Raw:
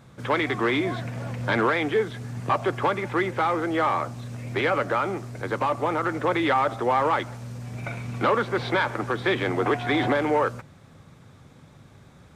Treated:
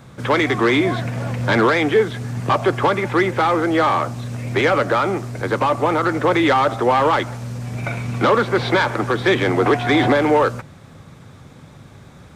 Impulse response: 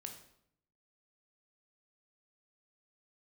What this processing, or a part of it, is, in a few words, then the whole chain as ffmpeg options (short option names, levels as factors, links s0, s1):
one-band saturation: -filter_complex "[0:a]acrossover=split=530|4000[s0][s1][s2];[s1]asoftclip=type=tanh:threshold=0.1[s3];[s0][s3][s2]amix=inputs=3:normalize=0,volume=2.51"